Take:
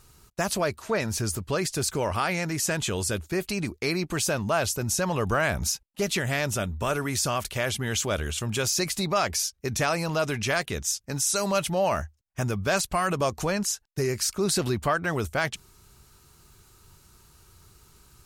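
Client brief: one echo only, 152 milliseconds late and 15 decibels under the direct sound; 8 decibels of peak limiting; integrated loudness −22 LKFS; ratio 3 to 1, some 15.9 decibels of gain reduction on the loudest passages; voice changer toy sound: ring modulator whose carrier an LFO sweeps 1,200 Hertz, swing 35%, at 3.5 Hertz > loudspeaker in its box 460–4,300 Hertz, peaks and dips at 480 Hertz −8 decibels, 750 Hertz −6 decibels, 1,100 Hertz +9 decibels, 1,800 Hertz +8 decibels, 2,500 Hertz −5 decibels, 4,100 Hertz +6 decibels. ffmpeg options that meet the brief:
ffmpeg -i in.wav -af "acompressor=threshold=-43dB:ratio=3,alimiter=level_in=11dB:limit=-24dB:level=0:latency=1,volume=-11dB,aecho=1:1:152:0.178,aeval=exprs='val(0)*sin(2*PI*1200*n/s+1200*0.35/3.5*sin(2*PI*3.5*n/s))':channel_layout=same,highpass=460,equalizer=frequency=480:width_type=q:width=4:gain=-8,equalizer=frequency=750:width_type=q:width=4:gain=-6,equalizer=frequency=1100:width_type=q:width=4:gain=9,equalizer=frequency=1800:width_type=q:width=4:gain=8,equalizer=frequency=2500:width_type=q:width=4:gain=-5,equalizer=frequency=4100:width_type=q:width=4:gain=6,lowpass=frequency=4300:width=0.5412,lowpass=frequency=4300:width=1.3066,volume=21.5dB" out.wav

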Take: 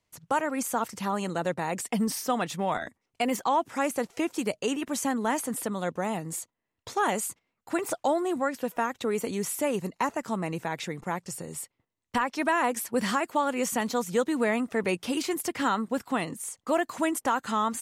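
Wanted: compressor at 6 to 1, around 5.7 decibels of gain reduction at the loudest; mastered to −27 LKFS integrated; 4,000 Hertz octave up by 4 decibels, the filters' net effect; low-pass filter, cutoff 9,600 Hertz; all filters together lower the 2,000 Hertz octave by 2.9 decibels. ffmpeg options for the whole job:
ffmpeg -i in.wav -af "lowpass=9600,equalizer=frequency=2000:width_type=o:gain=-5.5,equalizer=frequency=4000:width_type=o:gain=7.5,acompressor=threshold=-27dB:ratio=6,volume=6dB" out.wav

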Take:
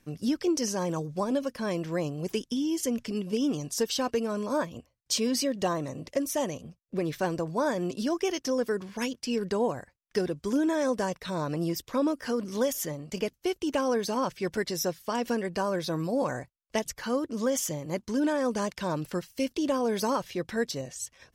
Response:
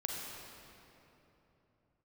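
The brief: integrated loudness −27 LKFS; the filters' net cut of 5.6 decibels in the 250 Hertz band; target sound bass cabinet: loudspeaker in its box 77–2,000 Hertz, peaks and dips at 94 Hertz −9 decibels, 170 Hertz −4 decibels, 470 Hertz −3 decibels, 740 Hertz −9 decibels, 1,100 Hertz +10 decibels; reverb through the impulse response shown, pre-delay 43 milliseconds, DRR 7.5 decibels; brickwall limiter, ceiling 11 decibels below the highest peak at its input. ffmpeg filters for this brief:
-filter_complex "[0:a]equalizer=frequency=250:width_type=o:gain=-6,alimiter=level_in=0.5dB:limit=-24dB:level=0:latency=1,volume=-0.5dB,asplit=2[link_01][link_02];[1:a]atrim=start_sample=2205,adelay=43[link_03];[link_02][link_03]afir=irnorm=-1:irlink=0,volume=-10dB[link_04];[link_01][link_04]amix=inputs=2:normalize=0,highpass=frequency=77:width=0.5412,highpass=frequency=77:width=1.3066,equalizer=frequency=94:width_type=q:width=4:gain=-9,equalizer=frequency=170:width_type=q:width=4:gain=-4,equalizer=frequency=470:width_type=q:width=4:gain=-3,equalizer=frequency=740:width_type=q:width=4:gain=-9,equalizer=frequency=1100:width_type=q:width=4:gain=10,lowpass=frequency=2000:width=0.5412,lowpass=frequency=2000:width=1.3066,volume=8dB"

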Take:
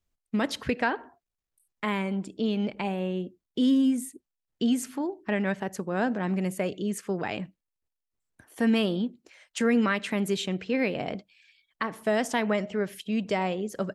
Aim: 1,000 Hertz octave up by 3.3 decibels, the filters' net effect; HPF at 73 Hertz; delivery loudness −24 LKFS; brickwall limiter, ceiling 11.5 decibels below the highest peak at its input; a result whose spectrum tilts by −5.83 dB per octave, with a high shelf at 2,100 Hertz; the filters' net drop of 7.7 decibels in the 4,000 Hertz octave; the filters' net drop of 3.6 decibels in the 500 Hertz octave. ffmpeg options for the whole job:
ffmpeg -i in.wav -af "highpass=73,equalizer=frequency=500:width_type=o:gain=-6.5,equalizer=frequency=1000:width_type=o:gain=8,highshelf=frequency=2100:gain=-6,equalizer=frequency=4000:width_type=o:gain=-5.5,volume=10dB,alimiter=limit=-13.5dB:level=0:latency=1" out.wav

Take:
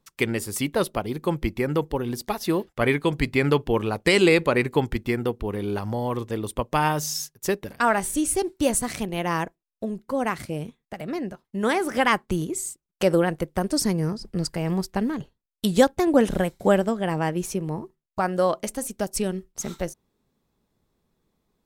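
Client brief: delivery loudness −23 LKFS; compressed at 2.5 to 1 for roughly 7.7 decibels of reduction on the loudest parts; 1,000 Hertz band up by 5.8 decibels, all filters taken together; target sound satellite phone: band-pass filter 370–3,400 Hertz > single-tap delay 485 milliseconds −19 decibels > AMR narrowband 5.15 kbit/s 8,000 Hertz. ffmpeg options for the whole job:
ffmpeg -i in.wav -af "equalizer=frequency=1000:width_type=o:gain=7.5,acompressor=threshold=-21dB:ratio=2.5,highpass=370,lowpass=3400,aecho=1:1:485:0.112,volume=7dB" -ar 8000 -c:a libopencore_amrnb -b:a 5150 out.amr

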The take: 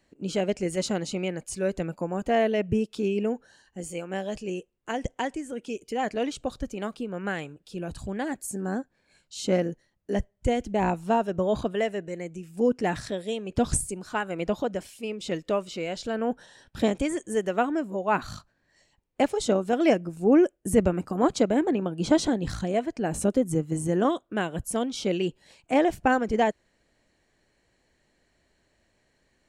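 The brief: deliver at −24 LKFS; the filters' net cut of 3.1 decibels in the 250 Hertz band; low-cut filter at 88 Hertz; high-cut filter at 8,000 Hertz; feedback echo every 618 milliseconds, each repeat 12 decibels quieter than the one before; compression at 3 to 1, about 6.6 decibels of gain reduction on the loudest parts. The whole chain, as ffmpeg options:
ffmpeg -i in.wav -af "highpass=88,lowpass=8000,equalizer=frequency=250:width_type=o:gain=-4,acompressor=threshold=-26dB:ratio=3,aecho=1:1:618|1236|1854:0.251|0.0628|0.0157,volume=8.5dB" out.wav

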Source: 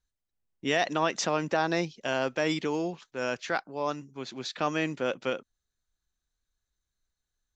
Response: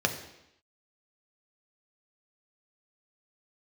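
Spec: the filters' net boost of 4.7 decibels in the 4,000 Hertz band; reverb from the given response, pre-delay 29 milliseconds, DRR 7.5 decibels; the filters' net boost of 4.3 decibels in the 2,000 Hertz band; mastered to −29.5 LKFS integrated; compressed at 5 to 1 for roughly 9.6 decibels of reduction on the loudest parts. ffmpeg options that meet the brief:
-filter_complex "[0:a]equalizer=frequency=2000:width_type=o:gain=4.5,equalizer=frequency=4000:width_type=o:gain=4.5,acompressor=threshold=-30dB:ratio=5,asplit=2[link_01][link_02];[1:a]atrim=start_sample=2205,adelay=29[link_03];[link_02][link_03]afir=irnorm=-1:irlink=0,volume=-18dB[link_04];[link_01][link_04]amix=inputs=2:normalize=0,volume=5dB"

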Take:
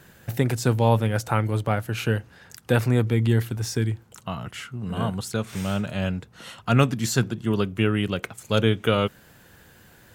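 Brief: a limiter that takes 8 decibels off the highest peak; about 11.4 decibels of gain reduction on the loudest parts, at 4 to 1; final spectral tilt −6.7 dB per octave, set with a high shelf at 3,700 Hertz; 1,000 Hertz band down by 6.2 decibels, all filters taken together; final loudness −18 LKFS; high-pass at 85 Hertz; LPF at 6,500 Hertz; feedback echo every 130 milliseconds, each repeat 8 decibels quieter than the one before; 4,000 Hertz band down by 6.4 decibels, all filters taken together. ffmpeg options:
ffmpeg -i in.wav -af "highpass=85,lowpass=6500,equalizer=frequency=1000:width_type=o:gain=-8,highshelf=frequency=3700:gain=-5.5,equalizer=frequency=4000:width_type=o:gain=-4.5,acompressor=threshold=-30dB:ratio=4,alimiter=level_in=1.5dB:limit=-24dB:level=0:latency=1,volume=-1.5dB,aecho=1:1:130|260|390|520|650:0.398|0.159|0.0637|0.0255|0.0102,volume=18dB" out.wav

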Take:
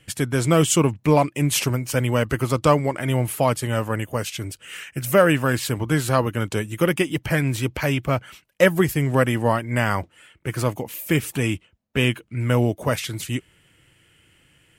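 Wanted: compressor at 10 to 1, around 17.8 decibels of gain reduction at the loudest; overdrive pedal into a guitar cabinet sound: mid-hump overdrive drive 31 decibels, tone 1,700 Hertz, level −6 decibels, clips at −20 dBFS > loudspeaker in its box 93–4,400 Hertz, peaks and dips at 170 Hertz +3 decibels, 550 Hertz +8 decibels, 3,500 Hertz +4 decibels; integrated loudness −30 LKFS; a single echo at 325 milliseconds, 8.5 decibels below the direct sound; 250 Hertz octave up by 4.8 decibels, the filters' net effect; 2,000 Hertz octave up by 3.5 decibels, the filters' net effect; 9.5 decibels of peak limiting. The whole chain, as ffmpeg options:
ffmpeg -i in.wav -filter_complex "[0:a]equalizer=frequency=250:width_type=o:gain=5.5,equalizer=frequency=2000:width_type=o:gain=4,acompressor=threshold=-27dB:ratio=10,alimiter=limit=-23dB:level=0:latency=1,aecho=1:1:325:0.376,asplit=2[link_01][link_02];[link_02]highpass=frequency=720:poles=1,volume=31dB,asoftclip=type=tanh:threshold=-20dB[link_03];[link_01][link_03]amix=inputs=2:normalize=0,lowpass=frequency=1700:poles=1,volume=-6dB,highpass=93,equalizer=frequency=170:width_type=q:width=4:gain=3,equalizer=frequency=550:width_type=q:width=4:gain=8,equalizer=frequency=3500:width_type=q:width=4:gain=4,lowpass=frequency=4400:width=0.5412,lowpass=frequency=4400:width=1.3066,volume=-2.5dB" out.wav

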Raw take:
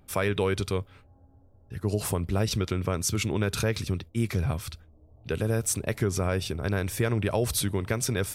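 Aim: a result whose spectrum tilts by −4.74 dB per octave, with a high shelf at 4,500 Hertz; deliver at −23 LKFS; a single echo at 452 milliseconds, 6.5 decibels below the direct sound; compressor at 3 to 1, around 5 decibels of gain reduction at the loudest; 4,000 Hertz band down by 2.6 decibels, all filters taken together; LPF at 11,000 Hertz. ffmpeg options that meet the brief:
ffmpeg -i in.wav -af "lowpass=11000,equalizer=frequency=4000:width_type=o:gain=-8,highshelf=frequency=4500:gain=7.5,acompressor=threshold=-28dB:ratio=3,aecho=1:1:452:0.473,volume=8.5dB" out.wav

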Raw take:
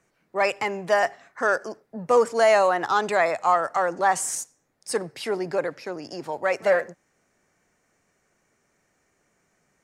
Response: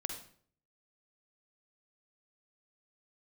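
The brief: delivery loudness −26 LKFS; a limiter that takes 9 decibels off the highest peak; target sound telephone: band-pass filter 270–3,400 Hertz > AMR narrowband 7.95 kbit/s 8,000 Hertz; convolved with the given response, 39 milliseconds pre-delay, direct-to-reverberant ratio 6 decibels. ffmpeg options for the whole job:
-filter_complex "[0:a]alimiter=limit=-17dB:level=0:latency=1,asplit=2[link_01][link_02];[1:a]atrim=start_sample=2205,adelay=39[link_03];[link_02][link_03]afir=irnorm=-1:irlink=0,volume=-6.5dB[link_04];[link_01][link_04]amix=inputs=2:normalize=0,highpass=270,lowpass=3400,volume=2.5dB" -ar 8000 -c:a libopencore_amrnb -b:a 7950

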